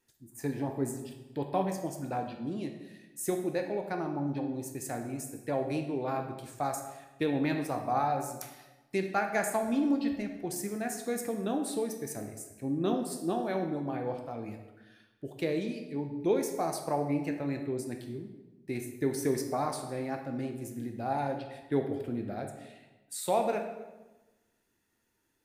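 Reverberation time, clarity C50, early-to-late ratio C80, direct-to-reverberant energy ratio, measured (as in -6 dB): 1.1 s, 6.5 dB, 9.0 dB, 4.0 dB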